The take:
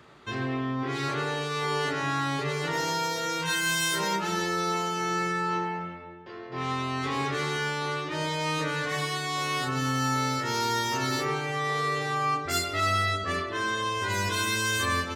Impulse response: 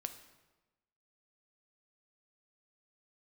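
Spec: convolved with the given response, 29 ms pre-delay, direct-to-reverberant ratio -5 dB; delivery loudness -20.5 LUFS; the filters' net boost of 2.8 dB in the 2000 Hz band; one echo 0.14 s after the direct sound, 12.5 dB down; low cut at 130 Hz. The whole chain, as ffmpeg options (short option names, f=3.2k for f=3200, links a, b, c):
-filter_complex "[0:a]highpass=130,equalizer=f=2k:t=o:g=3.5,aecho=1:1:140:0.237,asplit=2[a][b];[1:a]atrim=start_sample=2205,adelay=29[c];[b][c]afir=irnorm=-1:irlink=0,volume=7dB[d];[a][d]amix=inputs=2:normalize=0,volume=-0.5dB"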